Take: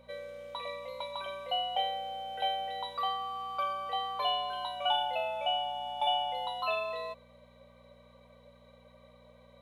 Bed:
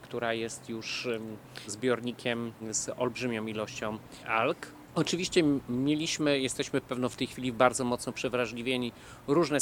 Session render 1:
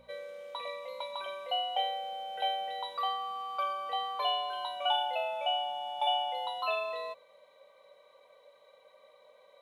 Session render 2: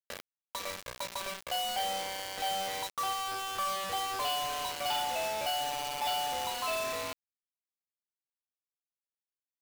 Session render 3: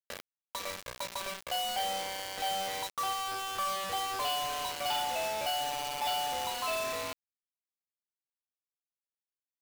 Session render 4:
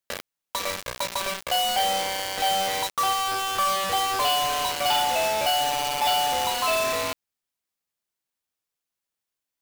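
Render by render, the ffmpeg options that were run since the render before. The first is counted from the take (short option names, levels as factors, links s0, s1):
-af "bandreject=f=60:t=h:w=4,bandreject=f=120:t=h:w=4,bandreject=f=180:t=h:w=4,bandreject=f=240:t=h:w=4"
-af "aresample=11025,volume=23.7,asoftclip=hard,volume=0.0422,aresample=44100,acrusher=bits=5:mix=0:aa=0.000001"
-af anull
-af "volume=2.99"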